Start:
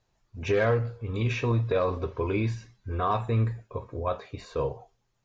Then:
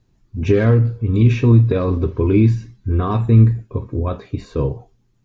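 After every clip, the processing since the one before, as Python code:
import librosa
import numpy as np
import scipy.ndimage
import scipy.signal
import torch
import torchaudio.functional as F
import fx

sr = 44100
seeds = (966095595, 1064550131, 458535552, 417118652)

y = fx.low_shelf_res(x, sr, hz=420.0, db=11.0, q=1.5)
y = y * librosa.db_to_amplitude(3.0)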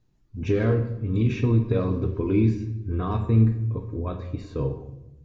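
y = fx.room_shoebox(x, sr, seeds[0], volume_m3=340.0, walls='mixed', distance_m=0.5)
y = y * librosa.db_to_amplitude(-8.0)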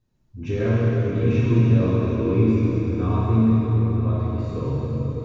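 y = fx.rev_plate(x, sr, seeds[1], rt60_s=5.0, hf_ratio=0.85, predelay_ms=0, drr_db=-7.5)
y = y * librosa.db_to_amplitude(-5.0)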